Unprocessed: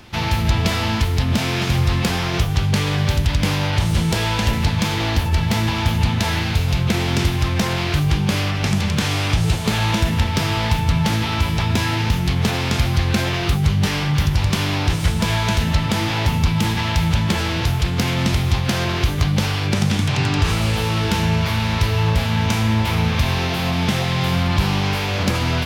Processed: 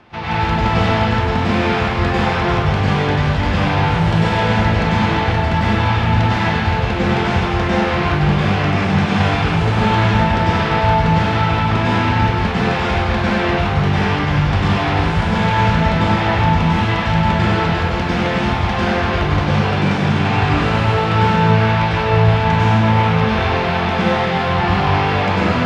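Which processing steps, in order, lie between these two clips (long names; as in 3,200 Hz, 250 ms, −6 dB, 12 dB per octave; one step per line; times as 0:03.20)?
Bessel low-pass filter 960 Hz, order 2
spectral tilt +3.5 dB per octave
dense smooth reverb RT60 1.8 s, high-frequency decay 0.75×, pre-delay 85 ms, DRR −8.5 dB
level +3 dB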